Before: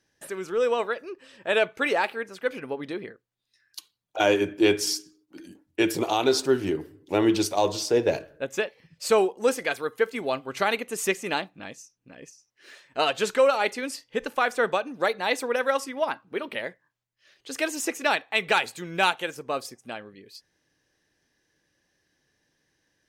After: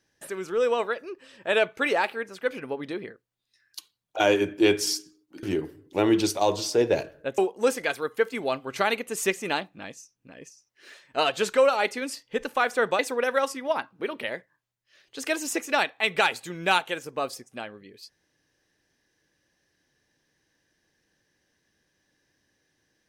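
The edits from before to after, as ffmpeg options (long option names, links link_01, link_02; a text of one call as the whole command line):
ffmpeg -i in.wav -filter_complex "[0:a]asplit=4[link_01][link_02][link_03][link_04];[link_01]atrim=end=5.432[link_05];[link_02]atrim=start=6.588:end=8.542[link_06];[link_03]atrim=start=9.188:end=14.802[link_07];[link_04]atrim=start=15.308[link_08];[link_05][link_06]acrossfade=duration=0.004:curve1=hsin:curve2=hsin[link_09];[link_09][link_07]acrossfade=duration=0.004:curve1=hsin:curve2=hsin[link_10];[link_10][link_08]acrossfade=duration=0.004:curve1=hsin:curve2=hsin" out.wav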